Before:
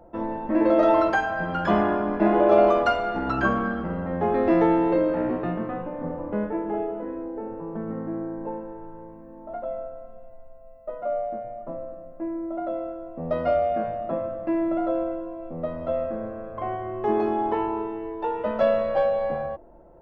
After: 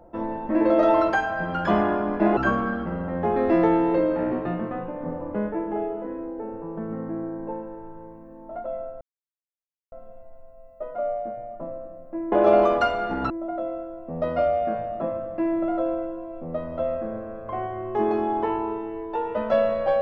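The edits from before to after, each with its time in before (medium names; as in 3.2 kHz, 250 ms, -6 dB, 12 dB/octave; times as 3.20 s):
2.37–3.35 s: move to 12.39 s
9.99 s: insert silence 0.91 s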